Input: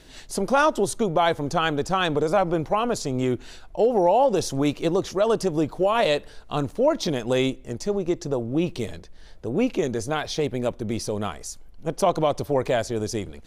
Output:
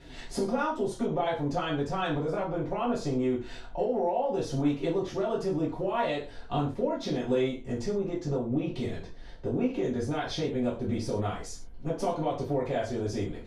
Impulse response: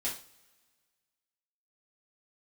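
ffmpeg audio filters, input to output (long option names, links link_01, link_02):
-filter_complex "[0:a]aemphasis=mode=reproduction:type=75kf,acompressor=threshold=-29dB:ratio=6[link_01];[1:a]atrim=start_sample=2205,afade=type=out:start_time=0.19:duration=0.01,atrim=end_sample=8820[link_02];[link_01][link_02]afir=irnorm=-1:irlink=0"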